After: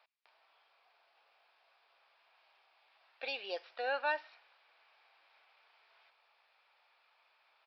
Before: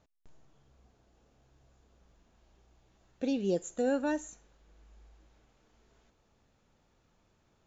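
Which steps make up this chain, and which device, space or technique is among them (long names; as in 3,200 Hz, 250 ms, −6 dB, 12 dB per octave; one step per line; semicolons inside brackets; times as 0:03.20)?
musical greeting card (downsampling to 11,025 Hz; high-pass filter 750 Hz 24 dB per octave; parametric band 2,400 Hz +7.5 dB 0.3 octaves)
level +5 dB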